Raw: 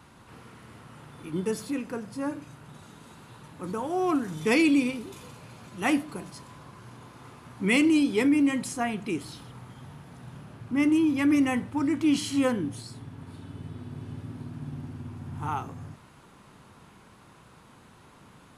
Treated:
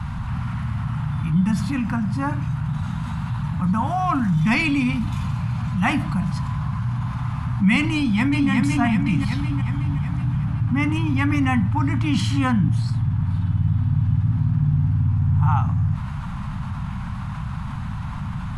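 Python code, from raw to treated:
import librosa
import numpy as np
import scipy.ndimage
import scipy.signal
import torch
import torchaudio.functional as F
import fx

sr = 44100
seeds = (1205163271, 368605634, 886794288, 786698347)

y = fx.echo_throw(x, sr, start_s=7.95, length_s=0.55, ms=370, feedback_pct=55, wet_db=-2.5)
y = scipy.signal.sosfilt(scipy.signal.cheby1(2, 1.0, [180.0, 890.0], 'bandstop', fs=sr, output='sos'), y)
y = fx.riaa(y, sr, side='playback')
y = fx.env_flatten(y, sr, amount_pct=50)
y = y * 10.0 ** (4.0 / 20.0)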